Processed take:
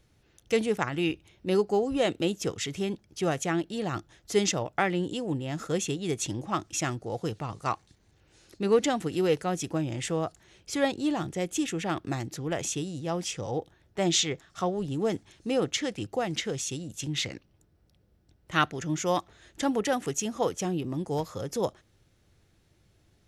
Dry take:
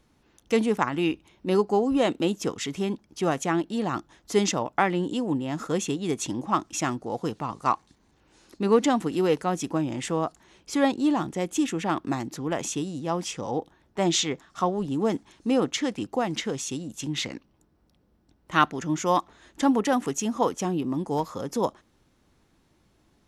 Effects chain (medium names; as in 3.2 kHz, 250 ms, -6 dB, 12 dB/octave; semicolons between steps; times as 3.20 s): fifteen-band graphic EQ 100 Hz +7 dB, 250 Hz -8 dB, 1 kHz -9 dB